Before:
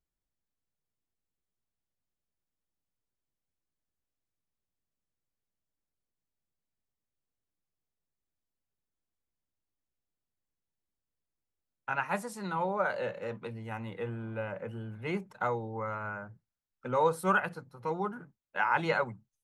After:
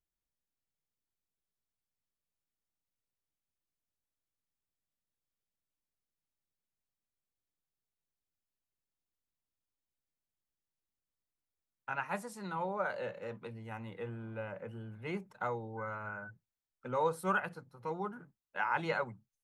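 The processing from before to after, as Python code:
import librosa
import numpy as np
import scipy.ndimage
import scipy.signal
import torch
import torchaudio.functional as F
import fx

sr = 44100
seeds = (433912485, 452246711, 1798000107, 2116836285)

y = fx.dmg_tone(x, sr, hz=1500.0, level_db=-41.0, at=(15.77, 16.29), fade=0.02)
y = y * 10.0 ** (-5.0 / 20.0)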